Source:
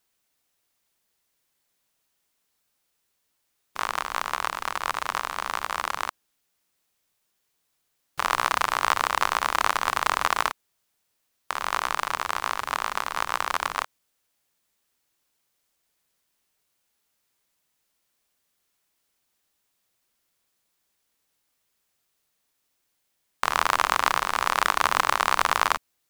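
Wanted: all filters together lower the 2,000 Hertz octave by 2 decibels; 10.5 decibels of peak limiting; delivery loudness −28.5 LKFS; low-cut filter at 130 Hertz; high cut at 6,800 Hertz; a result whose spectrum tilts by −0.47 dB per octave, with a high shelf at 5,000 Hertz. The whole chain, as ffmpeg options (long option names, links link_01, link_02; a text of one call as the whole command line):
ffmpeg -i in.wav -af "highpass=130,lowpass=6800,equalizer=frequency=2000:width_type=o:gain=-3.5,highshelf=frequency=5000:gain=5.5,volume=3dB,alimiter=limit=-9dB:level=0:latency=1" out.wav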